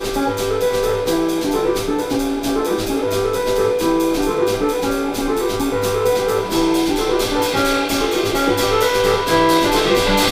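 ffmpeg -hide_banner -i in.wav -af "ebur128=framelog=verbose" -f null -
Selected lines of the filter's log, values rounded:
Integrated loudness:
  I:         -17.6 LUFS
  Threshold: -27.6 LUFS
Loudness range:
  LRA:         2.7 LU
  Threshold: -37.9 LUFS
  LRA low:   -19.0 LUFS
  LRA high:  -16.3 LUFS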